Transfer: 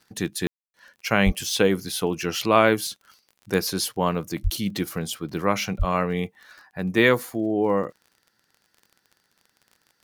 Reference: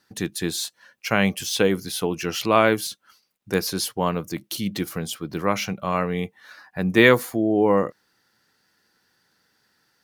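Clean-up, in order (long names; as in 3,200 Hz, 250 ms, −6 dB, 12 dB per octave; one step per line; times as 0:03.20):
click removal
0:01.25–0:01.37: high-pass filter 140 Hz 24 dB per octave
0:04.43–0:04.55: high-pass filter 140 Hz 24 dB per octave
0:05.78–0:05.90: high-pass filter 140 Hz 24 dB per octave
ambience match 0:00.47–0:00.74
level 0 dB, from 0:06.43 +3.5 dB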